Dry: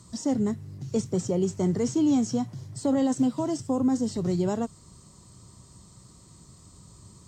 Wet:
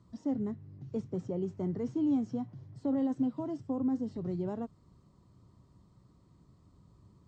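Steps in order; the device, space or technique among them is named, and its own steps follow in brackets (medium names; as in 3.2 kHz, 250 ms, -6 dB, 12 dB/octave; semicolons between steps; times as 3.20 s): phone in a pocket (low-pass 3.9 kHz 12 dB/octave; peaking EQ 280 Hz +4 dB 0.25 oct; treble shelf 2.1 kHz -10 dB); trim -9 dB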